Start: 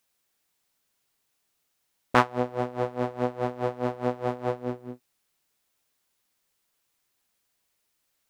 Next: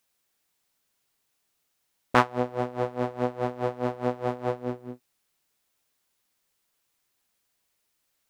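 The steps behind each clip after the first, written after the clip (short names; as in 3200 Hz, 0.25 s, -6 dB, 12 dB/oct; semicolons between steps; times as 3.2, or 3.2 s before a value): nothing audible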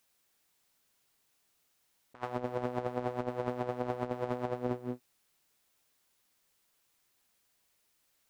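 negative-ratio compressor -31 dBFS, ratio -0.5; gain -3 dB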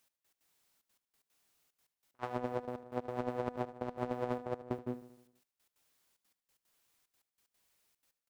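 step gate "x..x.xxxxx." 185 bpm -24 dB; feedback echo 77 ms, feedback 58%, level -15 dB; gain -1.5 dB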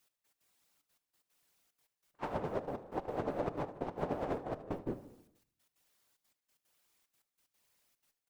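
whisperiser; shoebox room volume 610 m³, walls furnished, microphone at 0.38 m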